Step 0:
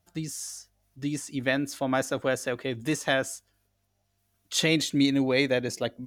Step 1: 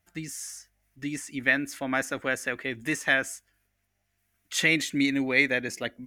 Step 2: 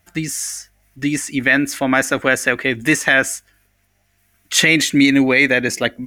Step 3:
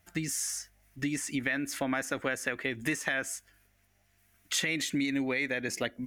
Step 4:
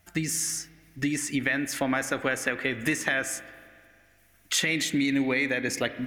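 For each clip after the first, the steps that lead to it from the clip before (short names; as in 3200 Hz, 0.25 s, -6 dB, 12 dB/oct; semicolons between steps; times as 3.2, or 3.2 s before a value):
graphic EQ 125/500/1000/2000/4000 Hz -7/-5/-4/+10/-6 dB
maximiser +14.5 dB; gain -1 dB
compressor 4:1, threshold -23 dBFS, peak gain reduction 12.5 dB; gain -6.5 dB
spring tank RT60 2.1 s, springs 31/36 ms, chirp 30 ms, DRR 12 dB; gain +4.5 dB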